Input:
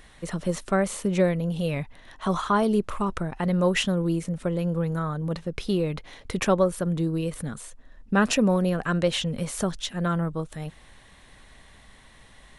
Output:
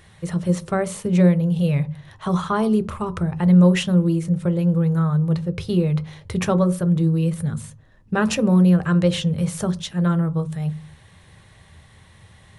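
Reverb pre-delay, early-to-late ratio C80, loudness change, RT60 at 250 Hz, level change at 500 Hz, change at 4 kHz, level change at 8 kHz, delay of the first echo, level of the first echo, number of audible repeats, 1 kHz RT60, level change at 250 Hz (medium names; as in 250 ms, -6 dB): 3 ms, 26.5 dB, +6.0 dB, 0.40 s, +1.5 dB, 0.0 dB, +0.5 dB, no echo, no echo, no echo, 0.40 s, +7.5 dB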